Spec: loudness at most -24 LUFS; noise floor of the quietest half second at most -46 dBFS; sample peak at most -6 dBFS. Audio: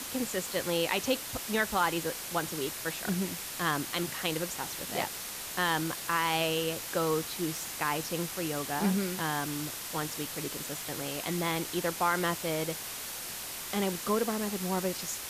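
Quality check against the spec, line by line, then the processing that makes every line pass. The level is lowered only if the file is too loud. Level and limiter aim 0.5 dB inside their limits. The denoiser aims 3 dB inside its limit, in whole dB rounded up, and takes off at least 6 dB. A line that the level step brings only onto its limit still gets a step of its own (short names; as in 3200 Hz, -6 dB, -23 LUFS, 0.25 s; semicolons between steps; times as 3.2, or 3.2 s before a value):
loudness -31.5 LUFS: OK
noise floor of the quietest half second -40 dBFS: fail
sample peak -14.5 dBFS: OK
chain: denoiser 9 dB, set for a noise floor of -40 dBFS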